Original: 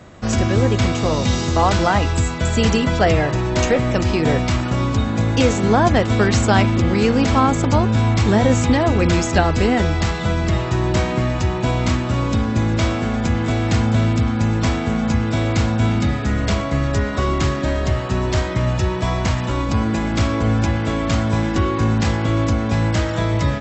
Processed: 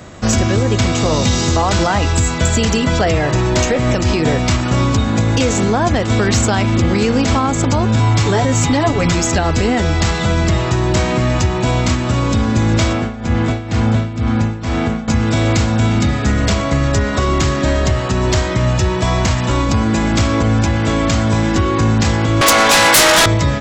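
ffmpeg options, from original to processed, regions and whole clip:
-filter_complex "[0:a]asettb=1/sr,asplit=3[s0][s1][s2];[s0]atrim=end=7.994[s3];[s1]atrim=start=7.99:end=9.15,asetpts=PTS-STARTPTS,afade=t=in:d=0.004:c=qsin,afade=t=out:st=1.156:d=0.004:c=qsin,equalizer=f=230:w=4:g=-4,aecho=1:1:7:0.76,atrim=end_sample=51156[s4];[s2]atrim=start=9.146[s5];[s3][s4]acrossfade=d=0.004:c1=hsin:c2=qsin[s6];[s6][s5]acrossfade=d=0.004:c1=qsin:c2=hsin,asettb=1/sr,asplit=3[s7][s8][s9];[s7]atrim=end=12.934[s10];[s8]atrim=start=12.93:end=15.08,asetpts=PTS-STARTPTS,afade=t=in:d=0.004:c=qsin,afade=t=out:st=2.146:d=0.004:c=qsin,tremolo=f=2.1:d=0.81,aemphasis=mode=reproduction:type=50kf[s11];[s9]atrim=start=15.076[s12];[s10][s11]acrossfade=d=0.004:c1=hsin:c2=qsin[s13];[s13][s12]acrossfade=d=0.004:c1=qsin:c2=hsin,asettb=1/sr,asplit=3[s14][s15][s16];[s14]atrim=end=22.414[s17];[s15]atrim=start=22.41:end=23.26,asetpts=PTS-STARTPTS,afade=t=in:d=0.004:c=qsin,afade=t=out:st=0.846:d=0.004:c=qsin,highpass=750,aeval=exprs='0.211*sin(PI/2*4.47*val(0)/0.211)':c=same[s18];[s16]atrim=start=23.256[s19];[s17][s18]acrossfade=d=0.004:c1=hsin:c2=qsin[s20];[s20][s19]acrossfade=d=0.004:c1=qsin:c2=hsin,alimiter=limit=0.266:level=0:latency=1:release=188,highshelf=f=6500:g=10,acontrast=61"

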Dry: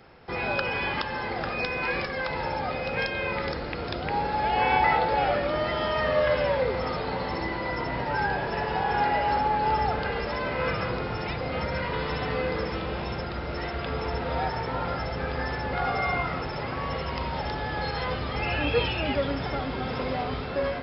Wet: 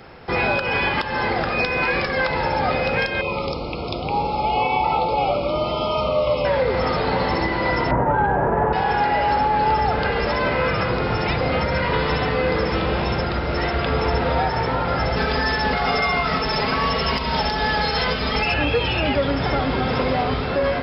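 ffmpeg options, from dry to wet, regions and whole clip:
-filter_complex "[0:a]asettb=1/sr,asplit=3[s0][s1][s2];[s0]atrim=end=3.214[s3];[s1]atrim=start=3.21:end=6.45,asetpts=PTS-STARTPTS,afade=t=in:d=0.004:c=qsin,afade=t=out:st=3.236:d=0.004:c=qsin,asuperstop=centerf=1700:order=12:qfactor=2,flanger=delay=5.2:depth=2.4:regen=-80:speed=1.7:shape=sinusoidal[s4];[s2]atrim=start=6.446[s5];[s3][s4]acrossfade=d=0.004:c1=hsin:c2=qsin[s6];[s6][s5]acrossfade=d=0.004:c1=qsin:c2=hsin,asettb=1/sr,asplit=3[s7][s8][s9];[s7]atrim=end=7.914[s10];[s8]atrim=start=7.91:end=8.73,asetpts=PTS-STARTPTS,afade=t=in:d=0.004:c=qsin,afade=t=out:st=0.816:d=0.004:c=qsin,lowpass=f=1400:w=0.5412,lowpass=f=1400:w=1.3066,acontrast=61[s11];[s9]atrim=start=8.726[s12];[s10][s11]acrossfade=d=0.004:c1=hsin:c2=qsin[s13];[s13][s12]acrossfade=d=0.004:c1=qsin:c2=hsin,asettb=1/sr,asplit=3[s14][s15][s16];[s14]atrim=end=15.164[s17];[s15]atrim=start=15.16:end=18.54,asetpts=PTS-STARTPTS,afade=t=in:d=0.004:c=qsin,afade=t=out:st=3.376:d=0.004:c=qsin,aemphasis=mode=production:type=75fm,aecho=1:1:4.6:0.61,atrim=end_sample=149058[s18];[s16]atrim=start=18.536[s19];[s17][s18]acrossfade=d=0.004:c1=hsin:c2=qsin[s20];[s20][s19]acrossfade=d=0.004:c1=qsin:c2=hsin,acontrast=90,alimiter=limit=0.211:level=0:latency=1:release=203,volume=1.33"

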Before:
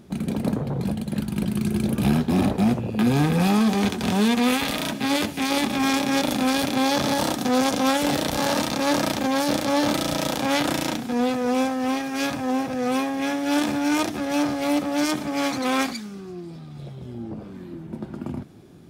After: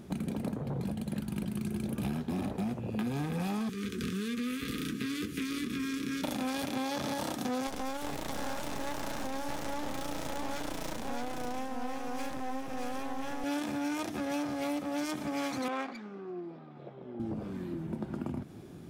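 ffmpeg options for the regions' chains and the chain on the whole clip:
-filter_complex "[0:a]asettb=1/sr,asplit=3[s0][s1][s2];[s0]atrim=end=3.694[s3];[s1]atrim=start=3.69:end=6.24,asetpts=PTS-STARTPTS,afade=t=in:d=0.004:c=qsin,afade=t=out:st=2.546:d=0.004:c=qsin,acrossover=split=360|750[s4][s5][s6];[s4]acompressor=threshold=0.0355:ratio=4[s7];[s5]acompressor=threshold=0.0178:ratio=4[s8];[s6]acompressor=threshold=0.02:ratio=4[s9];[s7][s8][s9]amix=inputs=3:normalize=0,asuperstop=centerf=740:order=12:qfactor=1.1,asplit=2[s10][s11];[s11]adelay=16,volume=0.251[s12];[s10][s12]amix=inputs=2:normalize=0,atrim=end_sample=112455[s13];[s2]atrim=start=6.236[s14];[s3][s13]acrossfade=d=0.004:c1=hsin:c2=qsin[s15];[s15][s14]acrossfade=d=0.004:c1=qsin:c2=hsin,asettb=1/sr,asplit=3[s16][s17][s18];[s16]atrim=end=7.674[s19];[s17]atrim=start=7.67:end=13.44,asetpts=PTS-STARTPTS,afade=t=in:d=0.004:c=qsin,afade=t=out:st=5.766:d=0.004:c=qsin,aeval=exprs='max(val(0),0)':c=same,aecho=1:1:624:0.668,atrim=end_sample=254457[s20];[s18]atrim=start=13.436[s21];[s19][s20]acrossfade=d=0.004:c1=hsin:c2=qsin[s22];[s22][s21]acrossfade=d=0.004:c1=qsin:c2=hsin,asettb=1/sr,asplit=3[s23][s24][s25];[s23]atrim=end=15.684[s26];[s24]atrim=start=15.68:end=17.2,asetpts=PTS-STARTPTS,afade=t=in:d=0.004:c=qsin,afade=t=out:st=1.516:d=0.004:c=qsin,highpass=350,highshelf=f=2900:g=-10.5,adynamicsmooth=sensitivity=3:basefreq=2900[s27];[s25]atrim=start=17.196[s28];[s26][s27]acrossfade=d=0.004:c1=hsin:c2=qsin[s29];[s29][s28]acrossfade=d=0.004:c1=qsin:c2=hsin,equalizer=f=4300:w=1.5:g=-2.5,acompressor=threshold=0.0251:ratio=6"

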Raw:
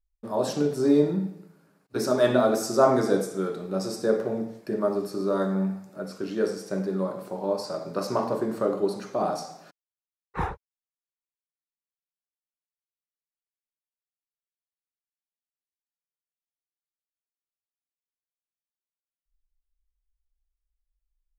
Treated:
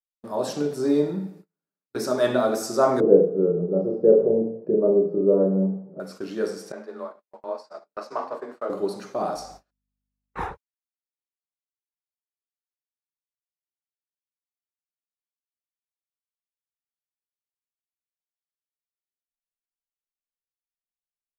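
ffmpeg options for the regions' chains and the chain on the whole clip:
-filter_complex "[0:a]asettb=1/sr,asplit=3[s0][s1][s2];[s0]atrim=end=3.004[s3];[s1]atrim=start=3:end=6,asetpts=PTS-STARTPTS,afade=t=in:d=0.004:c=qsin,afade=t=out:st=2.996:d=0.004:c=qsin,lowpass=f=470:t=q:w=3.8,equalizer=f=170:w=6.5:g=14.5,asplit=2[s4][s5];[s5]adelay=35,volume=0.501[s6];[s4][s6]amix=inputs=2:normalize=0,atrim=end_sample=132300[s7];[s2]atrim=start=5.996[s8];[s3][s7]acrossfade=d=0.004:c1=hsin:c2=qsin[s9];[s9][s8]acrossfade=d=0.004:c1=qsin:c2=hsin,asettb=1/sr,asplit=3[s10][s11][s12];[s10]atrim=end=6.724[s13];[s11]atrim=start=6.72:end=8.7,asetpts=PTS-STARTPTS,afade=t=in:d=0.004:c=qsin,afade=t=out:st=1.976:d=0.004:c=qsin,agate=range=0.0224:threshold=0.0447:ratio=3:release=100:detection=peak,bandpass=f=1400:t=q:w=0.55,afreqshift=26[s14];[s12]atrim=start=8.696[s15];[s13][s14]acrossfade=d=0.004:c1=hsin:c2=qsin[s16];[s16][s15]acrossfade=d=0.004:c1=qsin:c2=hsin,asettb=1/sr,asplit=3[s17][s18][s19];[s17]atrim=end=9.364[s20];[s18]atrim=start=9.36:end=10.48,asetpts=PTS-STARTPTS,afade=t=in:d=0.004:c=qsin,afade=t=out:st=1.116:d=0.004:c=qsin,aeval=exprs='val(0)+0.00501*(sin(2*PI*50*n/s)+sin(2*PI*2*50*n/s)/2+sin(2*PI*3*50*n/s)/3+sin(2*PI*4*50*n/s)/4+sin(2*PI*5*50*n/s)/5)':c=same,equalizer=f=130:w=1.5:g=-6[s21];[s19]atrim=start=10.476[s22];[s20][s21]acrossfade=d=0.004:c1=hsin:c2=qsin[s23];[s23][s22]acrossfade=d=0.004:c1=qsin:c2=hsin,lowshelf=f=150:g=-6.5,agate=range=0.0282:threshold=0.00631:ratio=16:detection=peak"

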